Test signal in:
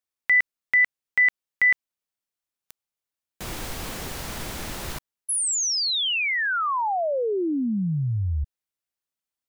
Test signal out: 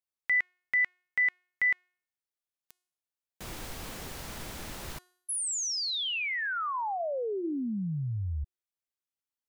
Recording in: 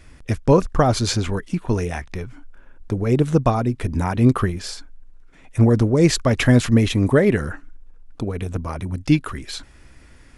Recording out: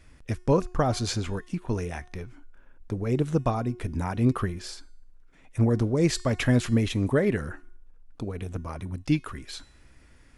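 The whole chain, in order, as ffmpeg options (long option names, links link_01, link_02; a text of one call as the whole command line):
ffmpeg -i in.wav -af "bandreject=frequency=361.7:width_type=h:width=4,bandreject=frequency=723.4:width_type=h:width=4,bandreject=frequency=1085.1:width_type=h:width=4,bandreject=frequency=1446.8:width_type=h:width=4,bandreject=frequency=1808.5:width_type=h:width=4,bandreject=frequency=2170.2:width_type=h:width=4,bandreject=frequency=2531.9:width_type=h:width=4,bandreject=frequency=2893.6:width_type=h:width=4,bandreject=frequency=3255.3:width_type=h:width=4,bandreject=frequency=3617:width_type=h:width=4,bandreject=frequency=3978.7:width_type=h:width=4,bandreject=frequency=4340.4:width_type=h:width=4,bandreject=frequency=4702.1:width_type=h:width=4,bandreject=frequency=5063.8:width_type=h:width=4,bandreject=frequency=5425.5:width_type=h:width=4,bandreject=frequency=5787.2:width_type=h:width=4,bandreject=frequency=6148.9:width_type=h:width=4,bandreject=frequency=6510.6:width_type=h:width=4,bandreject=frequency=6872.3:width_type=h:width=4,bandreject=frequency=7234:width_type=h:width=4,bandreject=frequency=7595.7:width_type=h:width=4,bandreject=frequency=7957.4:width_type=h:width=4,bandreject=frequency=8319.1:width_type=h:width=4,bandreject=frequency=8680.8:width_type=h:width=4,bandreject=frequency=9042.5:width_type=h:width=4,bandreject=frequency=9404.2:width_type=h:width=4,bandreject=frequency=9765.9:width_type=h:width=4,bandreject=frequency=10127.6:width_type=h:width=4,bandreject=frequency=10489.3:width_type=h:width=4,bandreject=frequency=10851:width_type=h:width=4,bandreject=frequency=11212.7:width_type=h:width=4,bandreject=frequency=11574.4:width_type=h:width=4,bandreject=frequency=11936.1:width_type=h:width=4,bandreject=frequency=12297.8:width_type=h:width=4,volume=-7.5dB" out.wav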